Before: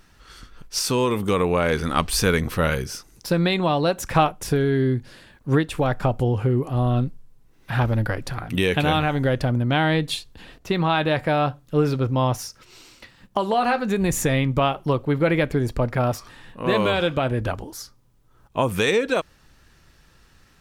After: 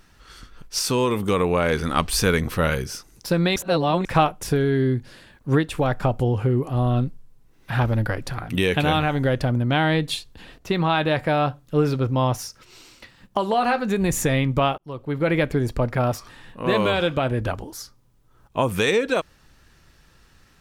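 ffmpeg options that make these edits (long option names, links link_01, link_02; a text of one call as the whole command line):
ffmpeg -i in.wav -filter_complex "[0:a]asplit=4[link_01][link_02][link_03][link_04];[link_01]atrim=end=3.562[link_05];[link_02]atrim=start=3.558:end=4.052,asetpts=PTS-STARTPTS,areverse[link_06];[link_03]atrim=start=4.048:end=14.78,asetpts=PTS-STARTPTS,afade=type=out:start_time=10.728:duration=0.004:curve=hsin[link_07];[link_04]atrim=start=14.78,asetpts=PTS-STARTPTS,afade=type=in:duration=0.58[link_08];[link_05][link_06]acrossfade=duration=0.004:curve1=hsin:curve2=hsin[link_09];[link_07][link_08]concat=n=2:v=0:a=1[link_10];[link_09][link_10]acrossfade=duration=0.004:curve1=hsin:curve2=hsin" out.wav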